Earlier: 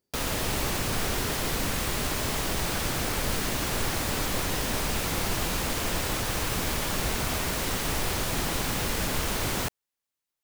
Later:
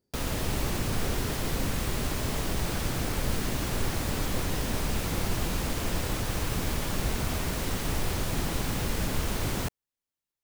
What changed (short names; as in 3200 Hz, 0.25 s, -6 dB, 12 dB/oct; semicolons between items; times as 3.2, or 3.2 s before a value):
background -5.0 dB; master: add low shelf 370 Hz +7.5 dB